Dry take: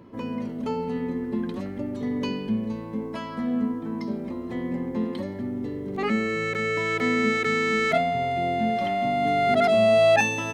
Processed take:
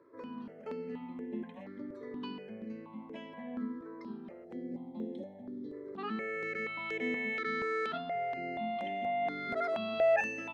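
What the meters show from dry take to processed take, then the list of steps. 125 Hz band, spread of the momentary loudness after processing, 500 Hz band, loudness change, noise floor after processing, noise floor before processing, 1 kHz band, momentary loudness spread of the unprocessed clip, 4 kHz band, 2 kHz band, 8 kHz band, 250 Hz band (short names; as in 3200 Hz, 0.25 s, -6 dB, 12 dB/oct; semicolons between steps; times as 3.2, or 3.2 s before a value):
-18.5 dB, 12 LU, -11.5 dB, -12.0 dB, -51 dBFS, -35 dBFS, -11.5 dB, 13 LU, -14.5 dB, -10.5 dB, under -20 dB, -14.0 dB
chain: spectral gain 4.44–5.73, 870–3200 Hz -14 dB; three-band isolator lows -23 dB, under 200 Hz, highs -18 dB, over 4200 Hz; step phaser 4.2 Hz 790–4500 Hz; gain -7.5 dB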